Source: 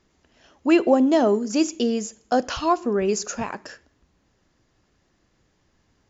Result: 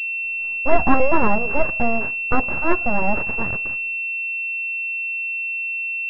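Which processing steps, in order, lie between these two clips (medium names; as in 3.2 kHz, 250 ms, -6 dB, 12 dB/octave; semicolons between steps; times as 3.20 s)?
gate with hold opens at -46 dBFS; full-wave rectifier; class-D stage that switches slowly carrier 2.7 kHz; trim +5.5 dB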